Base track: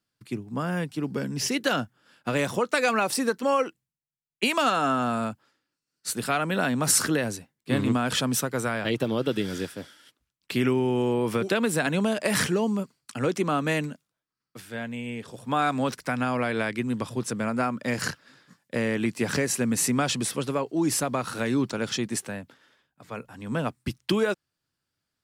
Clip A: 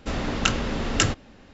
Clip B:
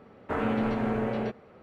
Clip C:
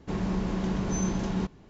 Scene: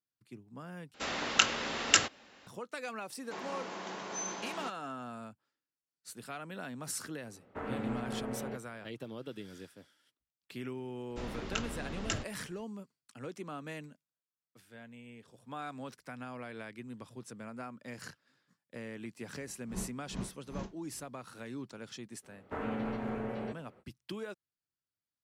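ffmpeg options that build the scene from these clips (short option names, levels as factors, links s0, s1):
-filter_complex "[1:a]asplit=2[s0][s1];[3:a]asplit=2[s2][s3];[2:a]asplit=2[s4][s5];[0:a]volume=0.133[s6];[s0]highpass=f=1100:p=1[s7];[s2]highpass=630[s8];[s3]aeval=exprs='val(0)*pow(10,-35*(0.5-0.5*cos(2*PI*2.5*n/s))/20)':c=same[s9];[s6]asplit=2[s10][s11];[s10]atrim=end=0.944[s12];[s7]atrim=end=1.53,asetpts=PTS-STARTPTS,volume=0.944[s13];[s11]atrim=start=2.466[s14];[s8]atrim=end=1.69,asetpts=PTS-STARTPTS,volume=0.841,afade=t=in:d=0.004:c=hsin,afade=t=out:st=1.686:d=0.004:c=hsin,adelay=3230[s15];[s4]atrim=end=1.62,asetpts=PTS-STARTPTS,volume=0.299,afade=t=in:d=0.004:c=hsin,afade=t=out:st=1.616:d=0.004:c=hsin,adelay=7260[s16];[s1]atrim=end=1.53,asetpts=PTS-STARTPTS,volume=0.2,afade=t=in:d=0.004:c=hsin,afade=t=out:st=1.526:d=0.004:c=hsin,adelay=11100[s17];[s9]atrim=end=1.69,asetpts=PTS-STARTPTS,volume=0.398,afade=t=in:d=0.004:c=hsin,afade=t=out:st=1.686:d=0.004:c=hsin,adelay=855540S[s18];[s5]atrim=end=1.62,asetpts=PTS-STARTPTS,volume=0.376,afade=t=in:d=0.05,afade=t=out:st=1.57:d=0.05,adelay=22220[s19];[s12][s13]acrossfade=d=0.004:c1=hsin:c2=hsin[s20];[s20][s14]acrossfade=d=0.004:c1=hsin:c2=hsin[s21];[s21][s15][s16][s17][s18][s19]amix=inputs=6:normalize=0"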